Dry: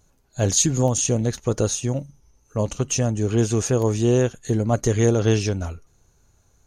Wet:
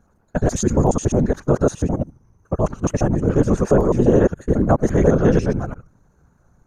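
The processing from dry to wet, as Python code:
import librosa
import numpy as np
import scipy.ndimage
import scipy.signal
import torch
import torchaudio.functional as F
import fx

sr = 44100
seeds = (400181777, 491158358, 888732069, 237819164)

y = fx.local_reverse(x, sr, ms=70.0)
y = fx.whisperise(y, sr, seeds[0])
y = fx.high_shelf_res(y, sr, hz=2100.0, db=-12.5, q=1.5)
y = F.gain(torch.from_numpy(y), 4.0).numpy()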